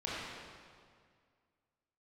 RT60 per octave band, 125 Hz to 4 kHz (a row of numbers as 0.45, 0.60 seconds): 2.3, 2.2, 2.1, 2.0, 1.8, 1.6 seconds